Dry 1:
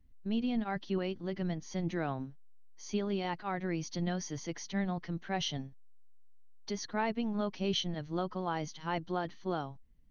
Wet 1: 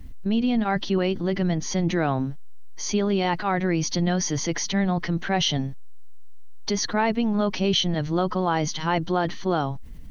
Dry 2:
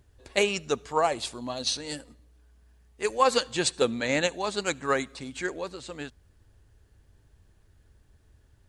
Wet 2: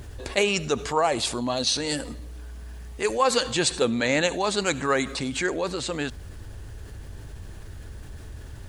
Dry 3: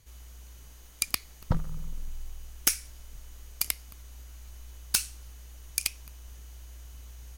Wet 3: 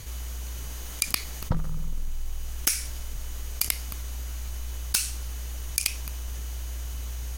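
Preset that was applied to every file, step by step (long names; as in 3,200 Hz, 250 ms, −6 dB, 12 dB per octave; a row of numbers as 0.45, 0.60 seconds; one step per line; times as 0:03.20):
envelope flattener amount 50%
normalise the peak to −9 dBFS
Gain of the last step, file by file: +9.0, −0.5, −0.5 decibels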